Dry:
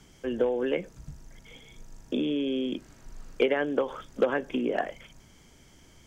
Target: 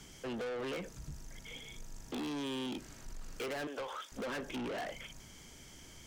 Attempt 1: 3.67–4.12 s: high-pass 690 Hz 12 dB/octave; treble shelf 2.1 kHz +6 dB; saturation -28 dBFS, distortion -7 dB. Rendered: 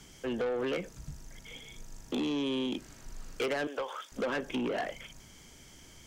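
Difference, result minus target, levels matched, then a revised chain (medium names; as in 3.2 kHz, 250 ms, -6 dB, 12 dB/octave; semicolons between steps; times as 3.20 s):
saturation: distortion -4 dB
3.67–4.12 s: high-pass 690 Hz 12 dB/octave; treble shelf 2.1 kHz +6 dB; saturation -37 dBFS, distortion -3 dB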